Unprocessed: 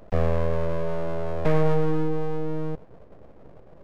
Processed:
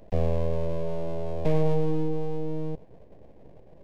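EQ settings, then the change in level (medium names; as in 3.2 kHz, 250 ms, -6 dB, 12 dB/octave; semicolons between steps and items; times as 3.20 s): peaking EQ 1.3 kHz -13.5 dB 0.53 oct; dynamic bell 1.8 kHz, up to -6 dB, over -53 dBFS, Q 2.1; -2.0 dB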